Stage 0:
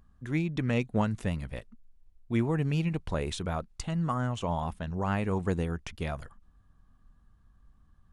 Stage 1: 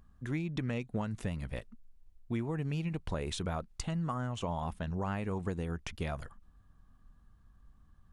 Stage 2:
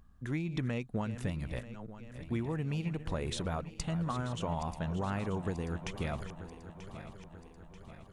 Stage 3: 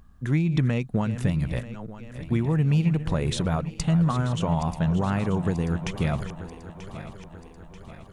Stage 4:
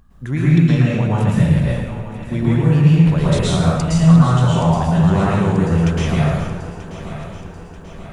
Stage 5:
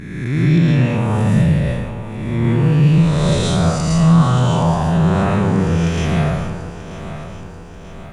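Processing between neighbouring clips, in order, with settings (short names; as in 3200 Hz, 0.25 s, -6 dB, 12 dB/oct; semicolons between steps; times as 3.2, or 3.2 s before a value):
compressor, threshold -31 dBFS, peak gain reduction 9.5 dB
regenerating reverse delay 0.468 s, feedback 73%, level -12 dB
dynamic EQ 150 Hz, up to +7 dB, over -49 dBFS, Q 1.8; gain +7.5 dB
plate-style reverb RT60 1.2 s, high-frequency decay 0.8×, pre-delay 0.1 s, DRR -7.5 dB; gain +1 dB
spectral swells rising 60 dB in 1.42 s; gain -2.5 dB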